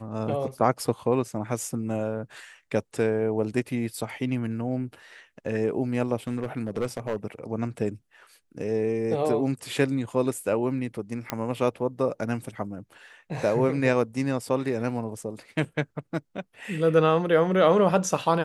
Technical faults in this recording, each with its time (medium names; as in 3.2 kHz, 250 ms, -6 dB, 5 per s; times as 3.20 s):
6.27–7.25 s: clipped -22 dBFS
11.30 s: pop -11 dBFS